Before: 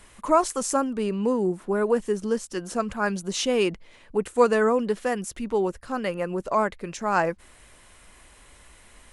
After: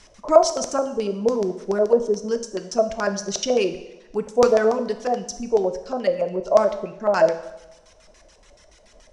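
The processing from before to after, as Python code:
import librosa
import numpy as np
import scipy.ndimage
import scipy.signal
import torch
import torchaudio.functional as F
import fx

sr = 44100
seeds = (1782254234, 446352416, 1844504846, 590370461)

y = fx.dereverb_blind(x, sr, rt60_s=0.81)
y = fx.filter_lfo_lowpass(y, sr, shape='square', hz=7.0, low_hz=610.0, high_hz=5700.0, q=5.8)
y = fx.rev_double_slope(y, sr, seeds[0], early_s=0.91, late_s=2.6, knee_db=-25, drr_db=7.5)
y = F.gain(torch.from_numpy(y), -1.0).numpy()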